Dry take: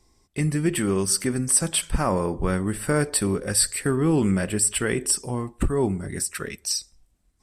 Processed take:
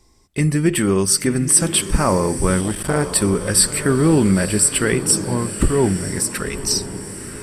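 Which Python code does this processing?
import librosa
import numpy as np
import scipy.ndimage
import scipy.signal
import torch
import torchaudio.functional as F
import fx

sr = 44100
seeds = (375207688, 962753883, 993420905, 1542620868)

y = fx.notch(x, sr, hz=740.0, q=18.0)
y = fx.echo_diffused(y, sr, ms=987, feedback_pct=50, wet_db=-11.5)
y = fx.transformer_sat(y, sr, knee_hz=700.0, at=(2.61, 3.18))
y = F.gain(torch.from_numpy(y), 6.0).numpy()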